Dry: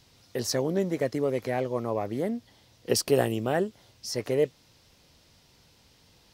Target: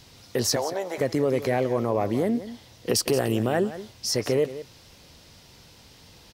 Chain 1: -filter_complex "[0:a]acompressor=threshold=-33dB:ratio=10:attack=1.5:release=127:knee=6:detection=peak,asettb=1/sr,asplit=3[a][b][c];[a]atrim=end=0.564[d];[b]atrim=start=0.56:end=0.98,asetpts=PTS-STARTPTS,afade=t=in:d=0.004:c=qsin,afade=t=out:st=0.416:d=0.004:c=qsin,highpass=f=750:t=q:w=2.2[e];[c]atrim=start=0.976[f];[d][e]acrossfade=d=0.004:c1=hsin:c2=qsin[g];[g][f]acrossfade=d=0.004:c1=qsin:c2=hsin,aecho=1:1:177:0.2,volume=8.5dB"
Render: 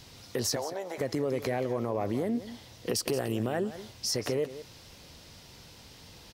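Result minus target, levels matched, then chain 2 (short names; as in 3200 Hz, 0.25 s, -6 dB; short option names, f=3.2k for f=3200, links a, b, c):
compressor: peak gain reduction +7 dB
-filter_complex "[0:a]acompressor=threshold=-25dB:ratio=10:attack=1.5:release=127:knee=6:detection=peak,asettb=1/sr,asplit=3[a][b][c];[a]atrim=end=0.564[d];[b]atrim=start=0.56:end=0.98,asetpts=PTS-STARTPTS,afade=t=in:d=0.004:c=qsin,afade=t=out:st=0.416:d=0.004:c=qsin,highpass=f=750:t=q:w=2.2[e];[c]atrim=start=0.976[f];[d][e]acrossfade=d=0.004:c1=hsin:c2=qsin[g];[g][f]acrossfade=d=0.004:c1=qsin:c2=hsin,aecho=1:1:177:0.2,volume=8.5dB"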